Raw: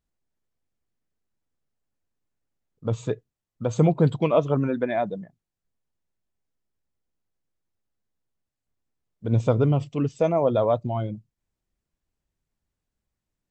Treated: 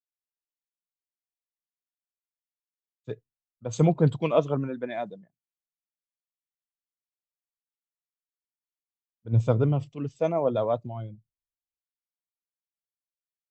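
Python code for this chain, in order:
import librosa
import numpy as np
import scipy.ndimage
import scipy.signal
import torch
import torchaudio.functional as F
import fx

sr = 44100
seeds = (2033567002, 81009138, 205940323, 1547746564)

y = fx.env_lowpass(x, sr, base_hz=1600.0, full_db=-21.5)
y = fx.spec_freeze(y, sr, seeds[0], at_s=1.32, hold_s=1.73)
y = fx.band_widen(y, sr, depth_pct=100)
y = y * 10.0 ** (-4.5 / 20.0)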